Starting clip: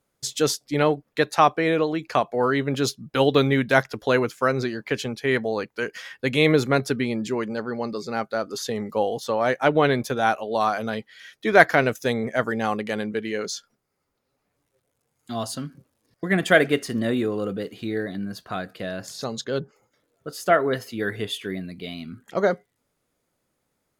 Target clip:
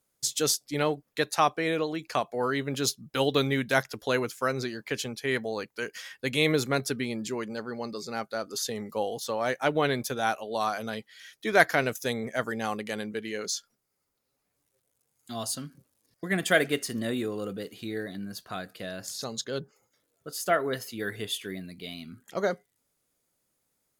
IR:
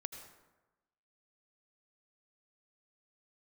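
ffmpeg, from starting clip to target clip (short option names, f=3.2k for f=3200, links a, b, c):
-af "highshelf=f=4.3k:g=12,volume=-7dB"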